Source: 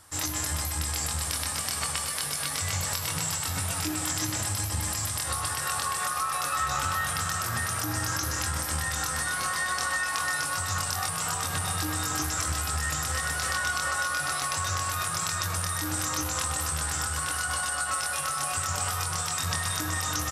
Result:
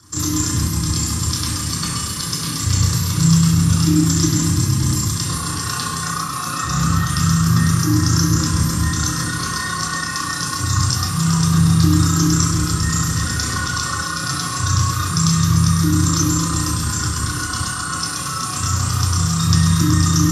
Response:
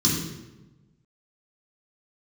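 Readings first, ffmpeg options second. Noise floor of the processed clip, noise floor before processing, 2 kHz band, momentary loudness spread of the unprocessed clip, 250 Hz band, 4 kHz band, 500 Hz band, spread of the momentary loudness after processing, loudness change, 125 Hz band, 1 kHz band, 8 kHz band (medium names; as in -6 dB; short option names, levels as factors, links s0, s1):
-25 dBFS, -32 dBFS, +3.0 dB, 1 LU, +21.0 dB, +8.5 dB, +6.0 dB, 7 LU, +10.0 dB, +18.5 dB, +5.5 dB, +7.5 dB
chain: -filter_complex "[0:a]tremolo=f=30:d=0.947[s0];[1:a]atrim=start_sample=2205[s1];[s0][s1]afir=irnorm=-1:irlink=0,volume=0.668"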